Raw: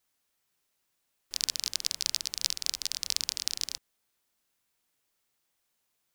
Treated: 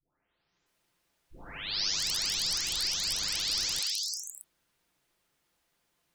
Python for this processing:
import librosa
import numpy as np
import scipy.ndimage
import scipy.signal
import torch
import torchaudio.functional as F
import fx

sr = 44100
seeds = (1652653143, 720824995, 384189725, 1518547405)

y = fx.spec_delay(x, sr, highs='late', ms=659)
y = fx.lowpass(y, sr, hz=3500.0, slope=6)
y = fx.low_shelf(y, sr, hz=340.0, db=3.5)
y = F.gain(torch.from_numpy(y), 8.5).numpy()